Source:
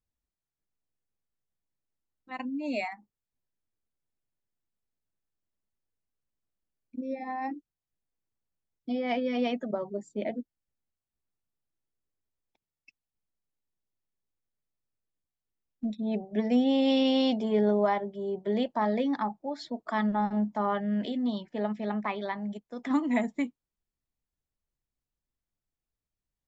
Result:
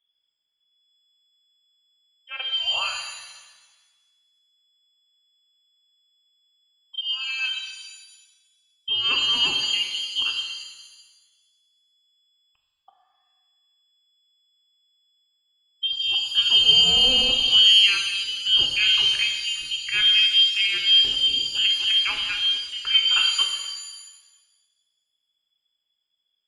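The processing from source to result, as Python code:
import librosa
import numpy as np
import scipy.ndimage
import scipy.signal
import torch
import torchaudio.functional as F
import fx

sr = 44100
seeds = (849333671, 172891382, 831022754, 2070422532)

y = fx.low_shelf(x, sr, hz=230.0, db=5.5)
y = fx.freq_invert(y, sr, carrier_hz=3400)
y = fx.rev_shimmer(y, sr, seeds[0], rt60_s=1.3, semitones=7, shimmer_db=-8, drr_db=2.5)
y = y * 10.0 ** (3.5 / 20.0)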